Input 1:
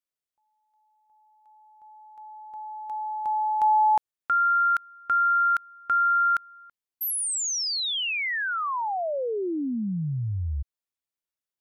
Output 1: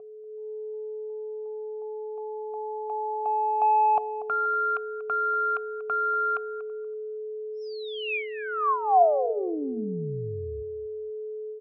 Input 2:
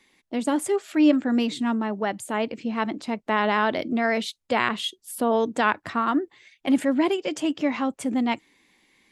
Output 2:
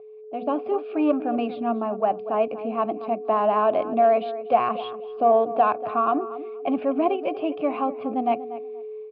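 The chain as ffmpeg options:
-filter_complex "[0:a]asoftclip=type=tanh:threshold=-13dB,aeval=exprs='val(0)+0.0251*sin(2*PI*430*n/s)':c=same,asplit=3[a][b][c];[a]bandpass=f=730:t=q:w=8,volume=0dB[d];[b]bandpass=f=1.09k:t=q:w=8,volume=-6dB[e];[c]bandpass=f=2.44k:t=q:w=8,volume=-9dB[f];[d][e][f]amix=inputs=3:normalize=0,aresample=11025,aresample=44100,equalizer=f=110:w=0.32:g=14,bandreject=f=243:t=h:w=4,bandreject=f=486:t=h:w=4,bandreject=f=729:t=h:w=4,dynaudnorm=f=250:g=3:m=9dB,bass=f=250:g=0,treble=f=4k:g=-12,asplit=2[g][h];[h]adelay=239,lowpass=f=2.3k:p=1,volume=-14dB,asplit=2[i][j];[j]adelay=239,lowpass=f=2.3k:p=1,volume=0.21[k];[i][k]amix=inputs=2:normalize=0[l];[g][l]amix=inputs=2:normalize=0,volume=1dB"

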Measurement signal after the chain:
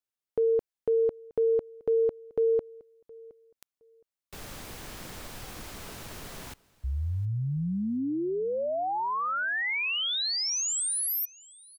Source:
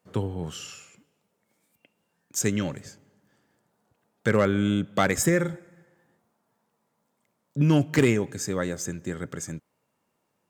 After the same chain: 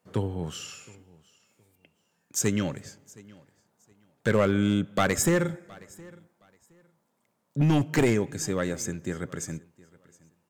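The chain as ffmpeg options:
-filter_complex "[0:a]acrossover=split=7000[a][b];[a]aeval=exprs='clip(val(0),-1,0.133)':c=same[c];[c][b]amix=inputs=2:normalize=0,aecho=1:1:717|1434:0.0668|0.0147"

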